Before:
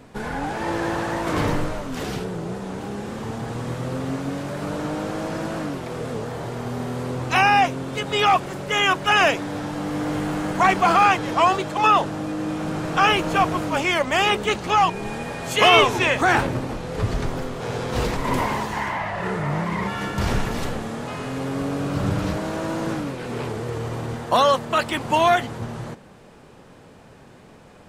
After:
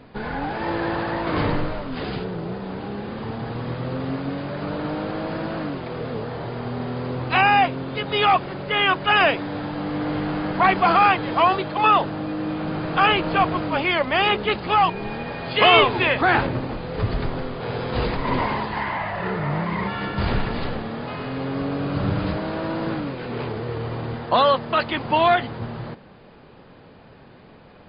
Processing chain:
linear-phase brick-wall low-pass 5,000 Hz

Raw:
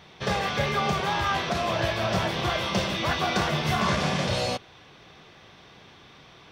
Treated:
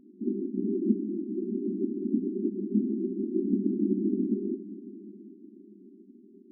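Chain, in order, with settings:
random phases in short frames
feedback delay with all-pass diffusion 472 ms, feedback 45%, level −14.5 dB
brick-wall band-pass 190–400 Hz
level +6 dB

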